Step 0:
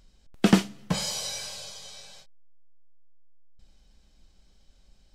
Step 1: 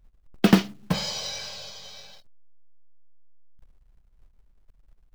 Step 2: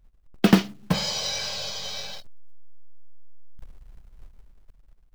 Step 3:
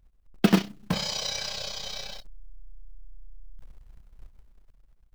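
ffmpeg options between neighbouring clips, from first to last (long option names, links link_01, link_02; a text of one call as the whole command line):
ffmpeg -i in.wav -af "anlmdn=0.00631,lowpass=frequency=5700:width=0.5412,lowpass=frequency=5700:width=1.3066,acrusher=bits=5:mode=log:mix=0:aa=0.000001,volume=2dB" out.wav
ffmpeg -i in.wav -af "dynaudnorm=framelen=200:gausssize=9:maxgain=12dB" out.wav
ffmpeg -i in.wav -af "tremolo=f=31:d=0.621" out.wav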